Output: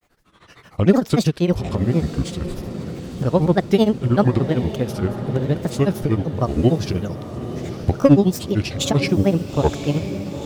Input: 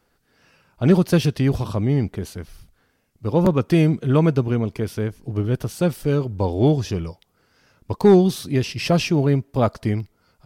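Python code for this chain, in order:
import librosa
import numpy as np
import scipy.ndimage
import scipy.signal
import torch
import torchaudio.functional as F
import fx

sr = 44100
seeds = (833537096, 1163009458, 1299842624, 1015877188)

y = fx.recorder_agc(x, sr, target_db=-14.0, rise_db_per_s=19.0, max_gain_db=30)
y = fx.granulator(y, sr, seeds[0], grain_ms=100.0, per_s=13.0, spray_ms=17.0, spread_st=7)
y = fx.echo_diffused(y, sr, ms=923, feedback_pct=61, wet_db=-11)
y = y * librosa.db_to_amplitude(3.0)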